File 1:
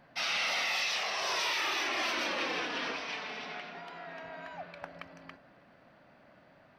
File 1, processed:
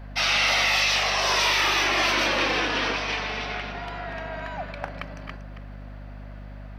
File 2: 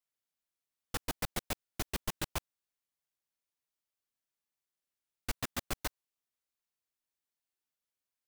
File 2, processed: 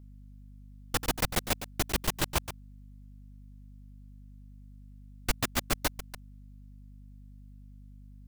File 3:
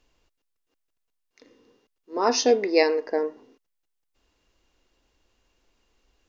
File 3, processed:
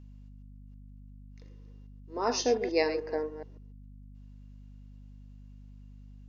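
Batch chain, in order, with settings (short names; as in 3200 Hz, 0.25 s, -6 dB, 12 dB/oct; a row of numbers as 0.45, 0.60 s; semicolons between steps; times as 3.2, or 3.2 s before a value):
reverse delay 0.143 s, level -11 dB; hum 50 Hz, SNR 13 dB; normalise peaks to -12 dBFS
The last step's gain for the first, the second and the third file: +9.5, +7.5, -7.5 dB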